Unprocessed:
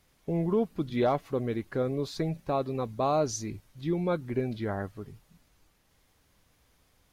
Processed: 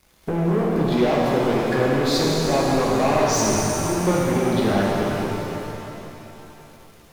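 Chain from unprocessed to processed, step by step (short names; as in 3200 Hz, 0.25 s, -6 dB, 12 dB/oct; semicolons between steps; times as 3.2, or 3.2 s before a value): compressor 8:1, threshold -32 dBFS, peak gain reduction 11 dB; sample leveller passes 3; bell 120 Hz -2.5 dB 0.77 oct; stuck buffer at 3.76, samples 512, times 10; shimmer reverb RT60 3.2 s, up +7 st, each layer -8 dB, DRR -4.5 dB; gain +5 dB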